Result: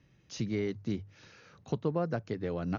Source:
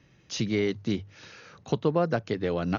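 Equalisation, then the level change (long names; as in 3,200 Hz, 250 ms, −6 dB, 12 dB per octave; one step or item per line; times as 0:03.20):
dynamic equaliser 3,300 Hz, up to −5 dB, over −52 dBFS, Q 1.8
low-shelf EQ 220 Hz +5.5 dB
−8.0 dB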